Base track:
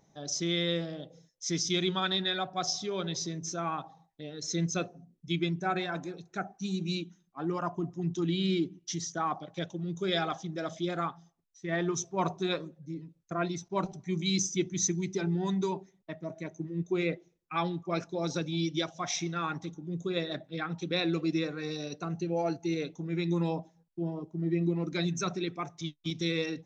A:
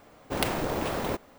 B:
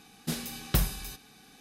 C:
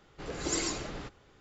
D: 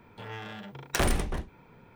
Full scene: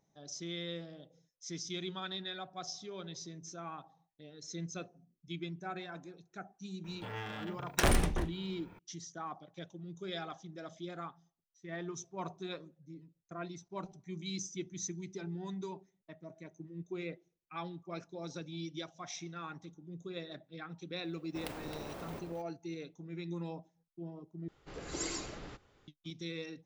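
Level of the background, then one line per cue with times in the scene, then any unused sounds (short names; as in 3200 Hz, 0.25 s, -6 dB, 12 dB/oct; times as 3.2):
base track -11 dB
6.84 add D -1.5 dB
21.04 add A -16.5 dB + echo with dull and thin repeats by turns 0.133 s, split 900 Hz, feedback 59%, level -4.5 dB
24.48 replace with C -6.5 dB
not used: B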